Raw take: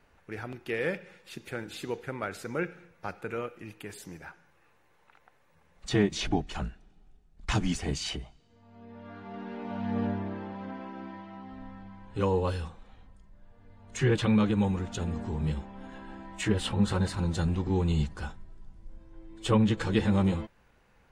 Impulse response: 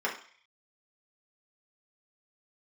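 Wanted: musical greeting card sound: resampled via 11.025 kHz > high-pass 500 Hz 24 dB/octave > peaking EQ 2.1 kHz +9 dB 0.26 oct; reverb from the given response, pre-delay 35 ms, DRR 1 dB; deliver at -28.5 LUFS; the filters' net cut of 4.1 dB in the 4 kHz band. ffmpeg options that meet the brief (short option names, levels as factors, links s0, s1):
-filter_complex "[0:a]equalizer=f=4000:t=o:g=-6,asplit=2[s0][s1];[1:a]atrim=start_sample=2205,adelay=35[s2];[s1][s2]afir=irnorm=-1:irlink=0,volume=0.316[s3];[s0][s3]amix=inputs=2:normalize=0,aresample=11025,aresample=44100,highpass=f=500:w=0.5412,highpass=f=500:w=1.3066,equalizer=f=2100:t=o:w=0.26:g=9,volume=2.37"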